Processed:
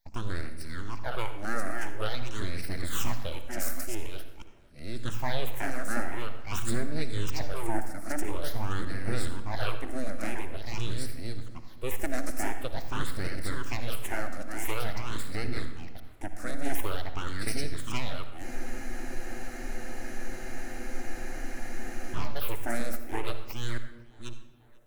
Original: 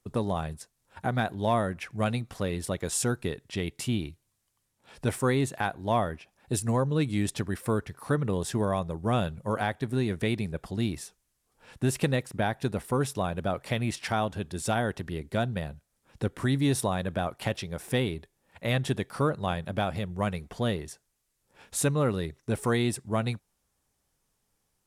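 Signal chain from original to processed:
delay that plays each chunk backwards 553 ms, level −3 dB
high-pass filter 67 Hz 24 dB per octave
parametric band 5,500 Hz +9.5 dB 0.96 octaves
full-wave rectification
all-pass phaser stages 8, 0.47 Hz, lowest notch 120–1,000 Hz
tape delay 491 ms, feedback 68%, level −21.5 dB, low-pass 2,800 Hz
on a send at −9 dB: convolution reverb RT60 1.0 s, pre-delay 58 ms
on the sum: frozen spectrum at 0:18.47, 3.68 s
level −2 dB

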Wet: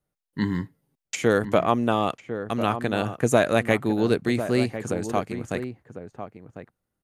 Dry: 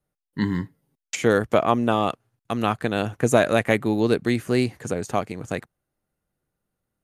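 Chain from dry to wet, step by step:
slap from a distant wall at 180 metres, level −10 dB
level −1.5 dB

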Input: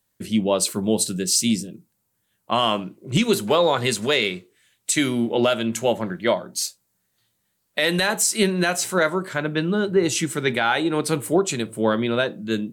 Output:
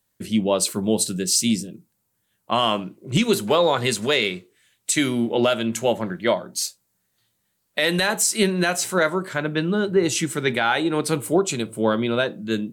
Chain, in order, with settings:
0:11.17–0:12.21: notch filter 1,800 Hz, Q 7.2

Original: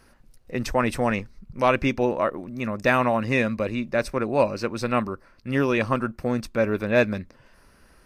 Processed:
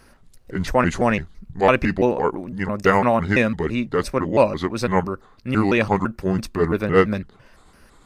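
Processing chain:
pitch shifter gated in a rhythm −4.5 semitones, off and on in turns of 168 ms
level +4.5 dB

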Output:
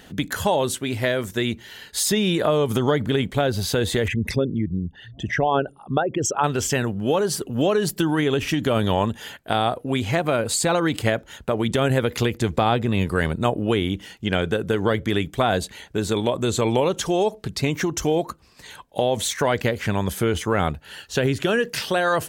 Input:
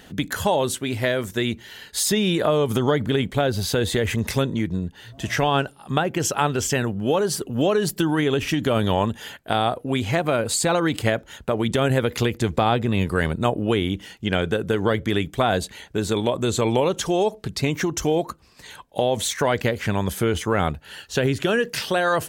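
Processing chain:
0:04.08–0:06.44: spectral envelope exaggerated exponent 2

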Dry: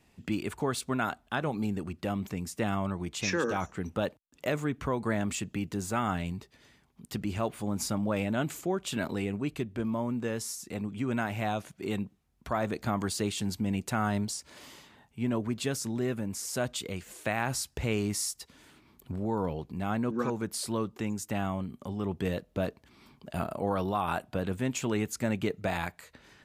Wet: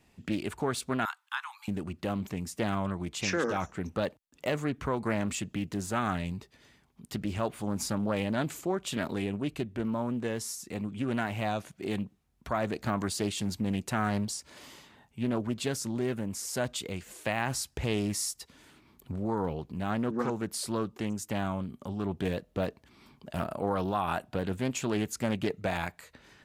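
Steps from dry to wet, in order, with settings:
0:01.05–0:01.68: Butterworth high-pass 910 Hz 72 dB per octave
highs frequency-modulated by the lows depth 0.28 ms

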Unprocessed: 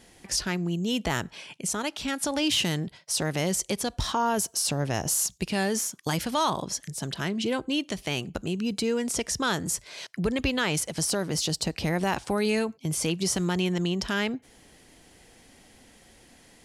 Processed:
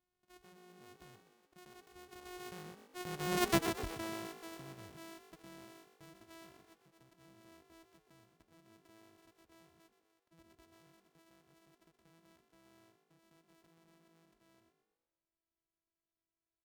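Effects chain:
samples sorted by size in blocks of 128 samples
source passing by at 0:03.50, 16 m/s, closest 1 metre
echo with shifted repeats 124 ms, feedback 47%, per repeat +51 Hz, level −10 dB
level +1.5 dB

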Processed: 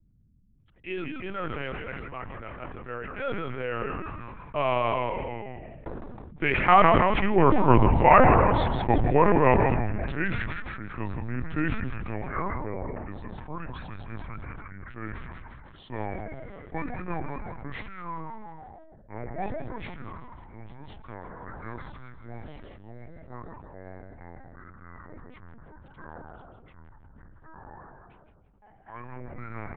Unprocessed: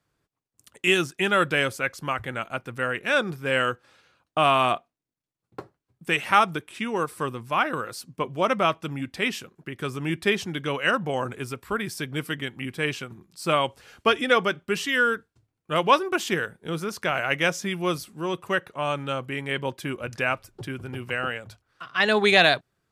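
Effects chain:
gliding playback speed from 93% → 61%
source passing by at 0:07.92, 20 m/s, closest 10 metres
low-pass filter 2,400 Hz 12 dB per octave
dynamic equaliser 1,500 Hz, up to −3 dB, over −58 dBFS, Q 0.94
automatic gain control gain up to 14 dB
echo with shifted repeats 165 ms, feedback 47%, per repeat −80 Hz, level −7 dB
mains hum 50 Hz, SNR 33 dB
linear-prediction vocoder at 8 kHz pitch kept
level that may fall only so fast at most 22 dB per second
level −2 dB

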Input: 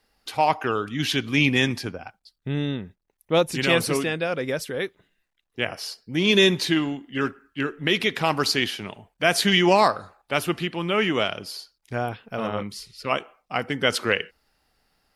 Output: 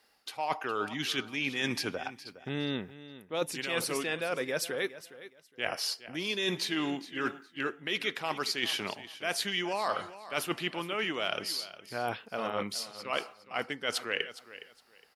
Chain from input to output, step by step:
high-pass filter 450 Hz 6 dB per octave
reversed playback
downward compressor 10 to 1, threshold −31 dBFS, peak gain reduction 17 dB
reversed playback
repeating echo 413 ms, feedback 22%, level −15.5 dB
level +2.5 dB

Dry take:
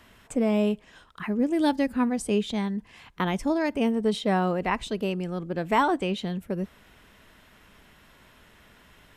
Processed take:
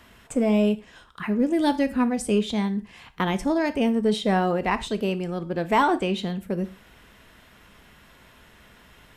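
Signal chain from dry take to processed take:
in parallel at −10 dB: hard clipping −20 dBFS, distortion −14 dB
on the sum: reverb whose tail is shaped and stops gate 140 ms falling, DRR 10.5 dB

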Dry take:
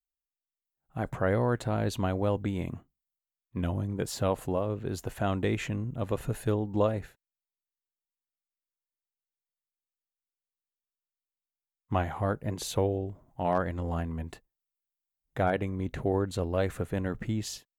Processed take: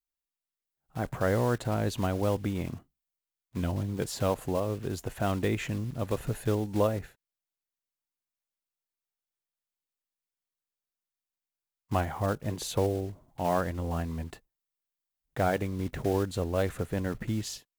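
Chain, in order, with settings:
one scale factor per block 5 bits

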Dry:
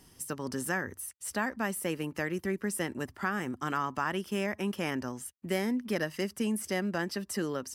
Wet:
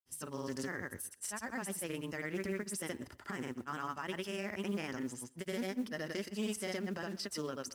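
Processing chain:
downward expander −53 dBFS
parametric band 6,000 Hz +4.5 dB 2.2 octaves
brickwall limiter −24.5 dBFS, peak gain reduction 9 dB
reversed playback
upward compression, threshold −36 dBFS
reversed playback
granular cloud, pitch spread up and down by 0 semitones
noise that follows the level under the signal 28 dB
on a send: tape delay 127 ms, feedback 24%, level −18 dB, low-pass 3,600 Hz
on the sum: highs frequency-modulated by the lows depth 0.2 ms
level −3 dB

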